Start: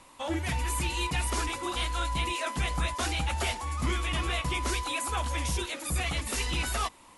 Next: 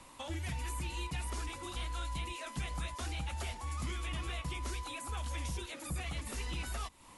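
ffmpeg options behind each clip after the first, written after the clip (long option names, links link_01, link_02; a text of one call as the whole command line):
ffmpeg -i in.wav -filter_complex "[0:a]bass=frequency=250:gain=4,treble=frequency=4000:gain=1,acrossover=split=150|2100[link_01][link_02][link_03];[link_01]acompressor=threshold=-38dB:ratio=4[link_04];[link_02]acompressor=threshold=-44dB:ratio=4[link_05];[link_03]acompressor=threshold=-46dB:ratio=4[link_06];[link_04][link_05][link_06]amix=inputs=3:normalize=0,volume=-1.5dB" out.wav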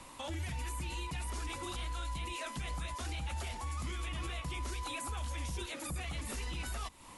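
ffmpeg -i in.wav -af "alimiter=level_in=10.5dB:limit=-24dB:level=0:latency=1:release=32,volume=-10.5dB,volume=3.5dB" out.wav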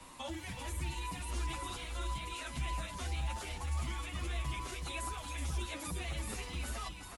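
ffmpeg -i in.wav -filter_complex "[0:a]acrossover=split=200[link_01][link_02];[link_01]acrusher=samples=11:mix=1:aa=0.000001[link_03];[link_03][link_02]amix=inputs=2:normalize=0,aecho=1:1:372:0.473,asplit=2[link_04][link_05];[link_05]adelay=7.8,afreqshift=-1.7[link_06];[link_04][link_06]amix=inputs=2:normalize=1,volume=2dB" out.wav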